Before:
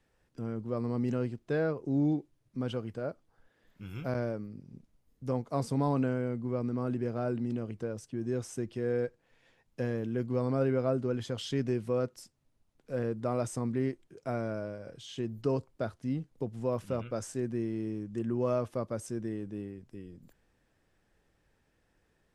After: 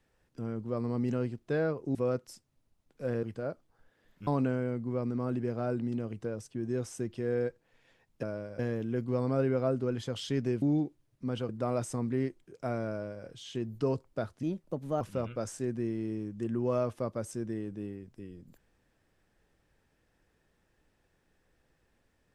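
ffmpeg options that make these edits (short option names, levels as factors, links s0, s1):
-filter_complex "[0:a]asplit=10[s0][s1][s2][s3][s4][s5][s6][s7][s8][s9];[s0]atrim=end=1.952[s10];[s1]atrim=start=11.838:end=13.122[s11];[s2]atrim=start=2.818:end=3.862[s12];[s3]atrim=start=5.848:end=9.812[s13];[s4]atrim=start=14.518:end=14.882[s14];[s5]atrim=start=9.808:end=11.842[s15];[s6]atrim=start=1.948:end=2.822[s16];[s7]atrim=start=13.118:end=16.064[s17];[s8]atrim=start=16.06:end=16.76,asetpts=PTS-STARTPTS,asetrate=53361,aresample=44100,atrim=end_sample=25512,asetpts=PTS-STARTPTS[s18];[s9]atrim=start=16.756[s19];[s10][s11]acrossfade=d=0.004:c1=hsin:c2=hsin[s20];[s20][s12]acrossfade=d=0.004:c1=hsin:c2=hsin[s21];[s21][s13]acrossfade=d=0.004:c1=hsin:c2=hsin[s22];[s22][s14]acrossfade=d=0.004:c1=hsin:c2=hsin[s23];[s23][s15]acrossfade=d=0.004:c1=hsin:c2=hsin[s24];[s24][s16]acrossfade=d=0.004:c1=hsin:c2=hsin[s25];[s25][s17]acrossfade=d=0.004:c1=hsin:c2=hsin[s26];[s26][s18]acrossfade=d=0.004:c1=hsin:c2=hsin[s27];[s27][s19]acrossfade=d=0.004:c1=hsin:c2=hsin"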